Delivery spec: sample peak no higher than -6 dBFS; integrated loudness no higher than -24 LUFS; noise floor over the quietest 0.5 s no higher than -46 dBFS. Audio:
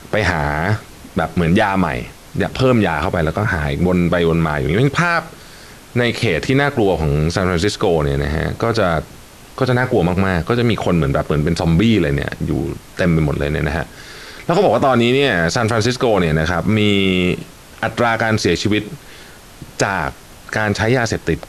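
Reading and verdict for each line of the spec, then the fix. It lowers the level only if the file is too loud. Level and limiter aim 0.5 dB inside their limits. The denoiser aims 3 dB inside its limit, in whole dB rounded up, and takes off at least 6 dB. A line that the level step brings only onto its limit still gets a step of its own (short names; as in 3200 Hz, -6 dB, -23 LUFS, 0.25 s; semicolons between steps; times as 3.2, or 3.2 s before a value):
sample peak -4.0 dBFS: fail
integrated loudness -17.0 LUFS: fail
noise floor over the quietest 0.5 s -39 dBFS: fail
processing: gain -7.5 dB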